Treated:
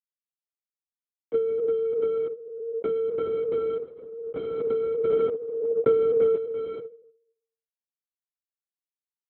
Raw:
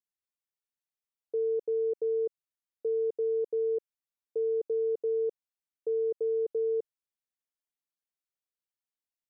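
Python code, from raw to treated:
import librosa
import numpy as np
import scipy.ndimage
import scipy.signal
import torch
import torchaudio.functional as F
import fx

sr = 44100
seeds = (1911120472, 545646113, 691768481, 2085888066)

y = fx.law_mismatch(x, sr, coded='mu')
y = fx.air_absorb(y, sr, metres=130.0)
y = fx.level_steps(y, sr, step_db=15)
y = fx.rev_fdn(y, sr, rt60_s=0.76, lf_ratio=0.95, hf_ratio=0.85, size_ms=32.0, drr_db=7.0)
y = 10.0 ** (-28.0 / 20.0) * np.tanh(y / 10.0 ** (-28.0 / 20.0))
y = fx.peak_eq(y, sr, hz=560.0, db=fx.steps((0.0, 9.0), (5.12, 15.0), (6.36, 4.0)), octaves=1.7)
y = fx.transient(y, sr, attack_db=6, sustain_db=1)
y = fx.lpc_vocoder(y, sr, seeds[0], excitation='whisper', order=10)
y = scipy.signal.sosfilt(scipy.signal.butter(2, 290.0, 'highpass', fs=sr, output='sos'), y)
y = fx.pre_swell(y, sr, db_per_s=36.0)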